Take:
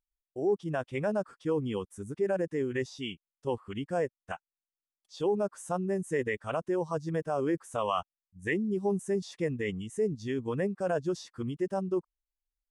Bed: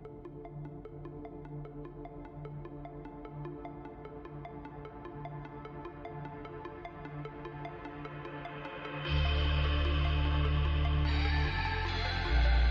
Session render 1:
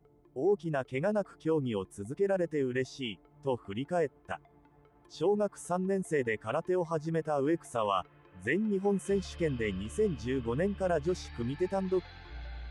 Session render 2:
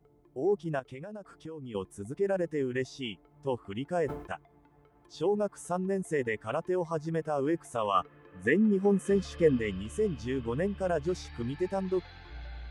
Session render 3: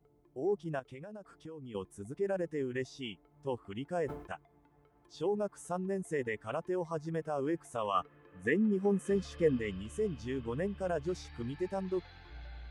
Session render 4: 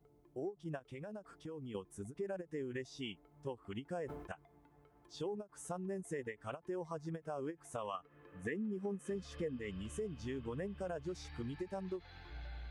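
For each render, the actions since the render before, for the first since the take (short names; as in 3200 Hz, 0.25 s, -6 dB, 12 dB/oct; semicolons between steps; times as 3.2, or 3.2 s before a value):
add bed -16 dB
0.79–1.75 compressor 16:1, threshold -38 dBFS; 3.92–4.34 sustainer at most 91 dB/s; 7.94–9.59 small resonant body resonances 250/460/1200/1700 Hz, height 11 dB
gain -4.5 dB
compressor 4:1, threshold -39 dBFS, peak gain reduction 14 dB; ending taper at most 350 dB/s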